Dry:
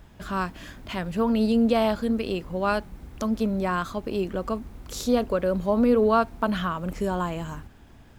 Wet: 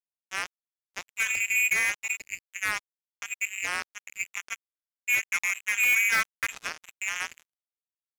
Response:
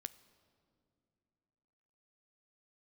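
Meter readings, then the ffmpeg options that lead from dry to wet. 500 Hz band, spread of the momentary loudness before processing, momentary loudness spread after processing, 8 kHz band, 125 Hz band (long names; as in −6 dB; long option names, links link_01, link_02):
−27.0 dB, 12 LU, 17 LU, +12.0 dB, below −25 dB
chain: -filter_complex "[0:a]lowpass=frequency=2300:width_type=q:width=0.5098,lowpass=frequency=2300:width_type=q:width=0.6013,lowpass=frequency=2300:width_type=q:width=0.9,lowpass=frequency=2300:width_type=q:width=2.563,afreqshift=-2700[link_01];[1:a]atrim=start_sample=2205[link_02];[link_01][link_02]afir=irnorm=-1:irlink=0,acrusher=bits=3:mix=0:aa=0.5"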